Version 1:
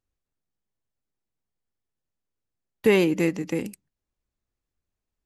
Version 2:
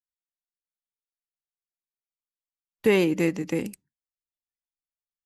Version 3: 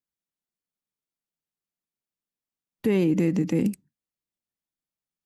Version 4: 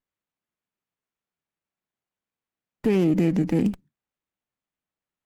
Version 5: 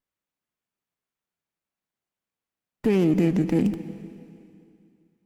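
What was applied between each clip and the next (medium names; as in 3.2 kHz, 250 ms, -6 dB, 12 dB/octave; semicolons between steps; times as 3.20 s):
spectral noise reduction 29 dB; gain riding 2 s
peaking EQ 190 Hz +12.5 dB 2.1 oct; peak limiter -14.5 dBFS, peak gain reduction 11.5 dB
sliding maximum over 9 samples; trim +1.5 dB
plate-style reverb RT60 2.5 s, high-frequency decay 1×, pre-delay 110 ms, DRR 13 dB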